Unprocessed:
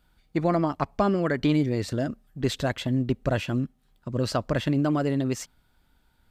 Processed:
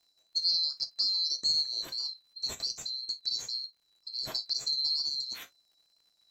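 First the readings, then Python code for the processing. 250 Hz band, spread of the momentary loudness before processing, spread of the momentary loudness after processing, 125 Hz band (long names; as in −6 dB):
−35.5 dB, 9 LU, 10 LU, −33.5 dB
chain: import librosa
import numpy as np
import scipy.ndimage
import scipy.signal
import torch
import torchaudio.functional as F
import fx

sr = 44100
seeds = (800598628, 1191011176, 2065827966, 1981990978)

y = fx.band_swap(x, sr, width_hz=4000)
y = fx.rev_gated(y, sr, seeds[0], gate_ms=80, shape='falling', drr_db=7.0)
y = fx.dmg_crackle(y, sr, seeds[1], per_s=110.0, level_db=-51.0)
y = fx.wow_flutter(y, sr, seeds[2], rate_hz=2.1, depth_cents=26.0)
y = F.gain(torch.from_numpy(y), -8.0).numpy()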